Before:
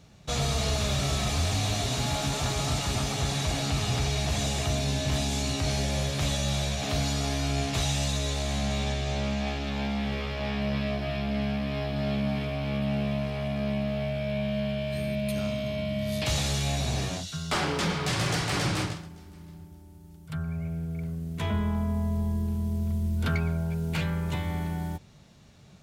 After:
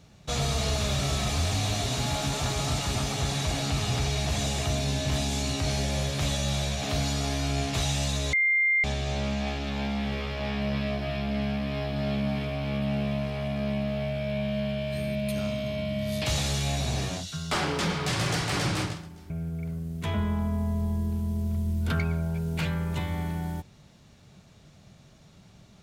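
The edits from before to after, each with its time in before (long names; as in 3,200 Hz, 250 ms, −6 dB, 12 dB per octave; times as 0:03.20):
0:08.33–0:08.84: beep over 2,100 Hz −20 dBFS
0:19.30–0:20.66: remove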